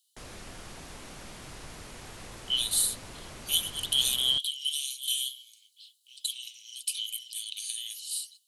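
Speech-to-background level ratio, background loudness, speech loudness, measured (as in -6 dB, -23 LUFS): 16.0 dB, -45.0 LUFS, -29.0 LUFS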